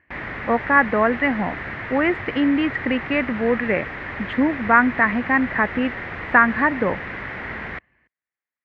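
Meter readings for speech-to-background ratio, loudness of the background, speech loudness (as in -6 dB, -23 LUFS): 10.0 dB, -30.5 LUFS, -20.5 LUFS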